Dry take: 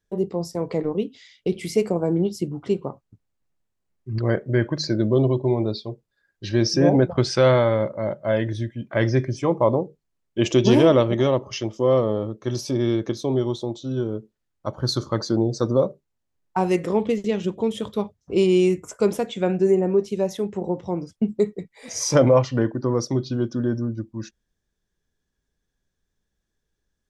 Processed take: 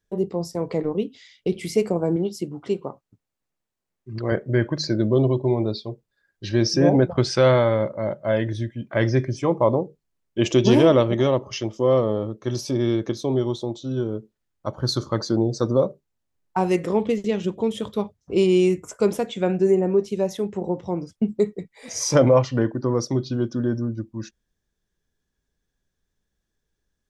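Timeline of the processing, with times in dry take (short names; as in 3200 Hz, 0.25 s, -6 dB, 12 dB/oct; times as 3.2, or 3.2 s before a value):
2.16–4.32 low shelf 150 Hz -10.5 dB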